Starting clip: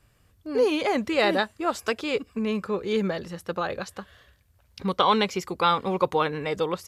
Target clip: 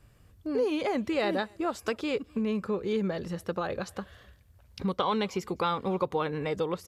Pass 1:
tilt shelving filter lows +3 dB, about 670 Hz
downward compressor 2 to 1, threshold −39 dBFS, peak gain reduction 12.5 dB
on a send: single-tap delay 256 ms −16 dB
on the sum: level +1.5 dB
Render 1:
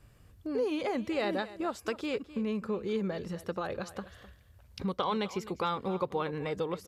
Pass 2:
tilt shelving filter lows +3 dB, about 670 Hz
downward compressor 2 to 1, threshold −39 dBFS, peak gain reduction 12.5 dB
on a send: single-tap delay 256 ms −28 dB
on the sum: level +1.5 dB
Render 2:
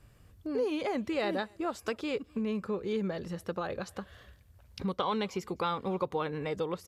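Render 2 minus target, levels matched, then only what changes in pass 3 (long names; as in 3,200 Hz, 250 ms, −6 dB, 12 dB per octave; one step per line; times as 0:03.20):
downward compressor: peak gain reduction +3.5 dB
change: downward compressor 2 to 1, threshold −32.5 dBFS, peak gain reduction 9.5 dB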